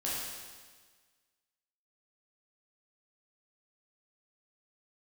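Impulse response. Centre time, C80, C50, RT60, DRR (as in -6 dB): 103 ms, 1.0 dB, -1.5 dB, 1.5 s, -7.5 dB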